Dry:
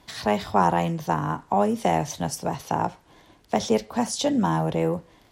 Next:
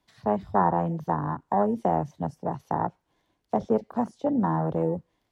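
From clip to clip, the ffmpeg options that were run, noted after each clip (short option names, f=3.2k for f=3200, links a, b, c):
-filter_complex "[0:a]afwtdn=0.0447,acrossover=split=120|2400[a][b][c];[c]acompressor=threshold=-59dB:ratio=6[d];[a][b][d]amix=inputs=3:normalize=0,volume=-2dB"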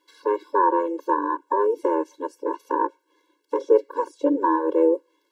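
-af "alimiter=level_in=12dB:limit=-1dB:release=50:level=0:latency=1,afftfilt=real='re*eq(mod(floor(b*sr/1024/290),2),1)':imag='im*eq(mod(floor(b*sr/1024/290),2),1)':win_size=1024:overlap=0.75,volume=-2.5dB"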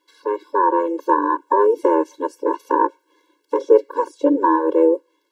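-af "dynaudnorm=f=220:g=7:m=7.5dB"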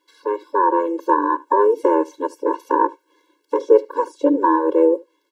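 -af "aecho=1:1:75:0.0708"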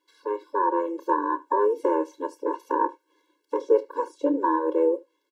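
-filter_complex "[0:a]asplit=2[a][b];[b]adelay=29,volume=-13dB[c];[a][c]amix=inputs=2:normalize=0,volume=-7dB"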